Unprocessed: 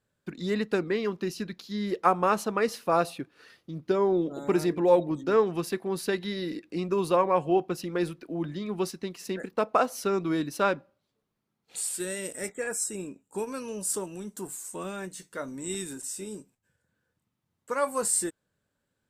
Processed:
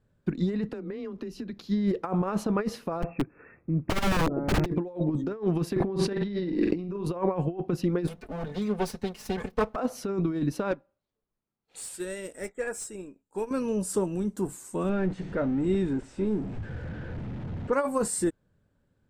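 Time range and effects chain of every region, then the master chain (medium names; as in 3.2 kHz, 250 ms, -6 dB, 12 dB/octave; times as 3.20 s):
0.69–1.58 s: frequency shift +21 Hz + compression 16:1, threshold -40 dBFS
3.02–4.66 s: brick-wall FIR low-pass 2.7 kHz + integer overflow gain 25 dB
5.76–7.06 s: distance through air 74 m + flutter echo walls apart 7.6 m, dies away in 0.31 s + level flattener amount 70%
8.07–9.76 s: comb filter that takes the minimum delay 4.6 ms + tilt EQ +2 dB/octave + comb of notches 330 Hz
10.71–13.51 s: peaking EQ 140 Hz -11.5 dB 2.5 oct + hard clipper -27 dBFS + upward expansion, over -49 dBFS
14.89–17.73 s: jump at every zero crossing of -38.5 dBFS + Bessel low-pass 2.2 kHz + peaking EQ 1.1 kHz -6.5 dB 0.27 oct
whole clip: tilt EQ -3 dB/octave; compressor with a negative ratio -25 dBFS, ratio -0.5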